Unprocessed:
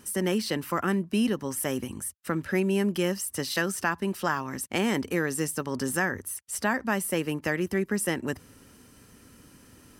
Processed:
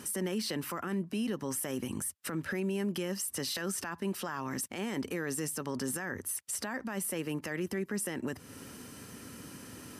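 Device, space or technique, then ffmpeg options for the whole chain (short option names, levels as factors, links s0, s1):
podcast mastering chain: -af "highpass=98,acompressor=threshold=0.0112:ratio=2.5,alimiter=level_in=2.66:limit=0.0631:level=0:latency=1:release=24,volume=0.376,volume=2.24" -ar 32000 -c:a libmp3lame -b:a 128k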